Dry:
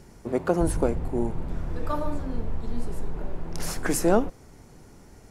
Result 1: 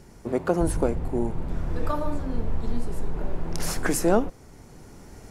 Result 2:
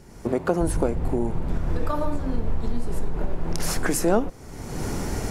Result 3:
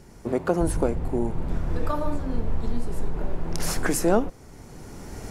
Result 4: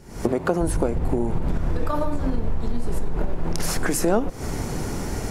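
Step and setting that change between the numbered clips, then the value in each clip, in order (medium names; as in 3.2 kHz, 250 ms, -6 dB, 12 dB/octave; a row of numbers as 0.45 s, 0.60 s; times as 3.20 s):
recorder AGC, rising by: 5.2 dB/s, 34 dB/s, 13 dB/s, 90 dB/s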